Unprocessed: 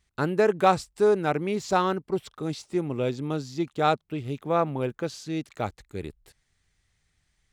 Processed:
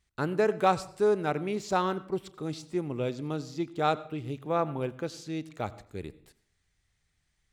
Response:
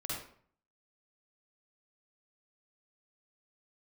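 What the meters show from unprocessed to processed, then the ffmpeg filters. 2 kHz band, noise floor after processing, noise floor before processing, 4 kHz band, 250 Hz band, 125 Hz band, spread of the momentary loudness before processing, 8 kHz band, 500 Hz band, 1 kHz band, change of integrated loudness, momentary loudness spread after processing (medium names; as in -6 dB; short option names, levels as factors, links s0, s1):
-4.0 dB, -76 dBFS, -74 dBFS, -4.0 dB, -4.0 dB, -4.0 dB, 11 LU, -4.0 dB, -4.0 dB, -4.0 dB, -4.0 dB, 11 LU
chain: -filter_complex "[0:a]asplit=2[s0][s1];[1:a]atrim=start_sample=2205,adelay=33[s2];[s1][s2]afir=irnorm=-1:irlink=0,volume=0.119[s3];[s0][s3]amix=inputs=2:normalize=0,volume=0.631"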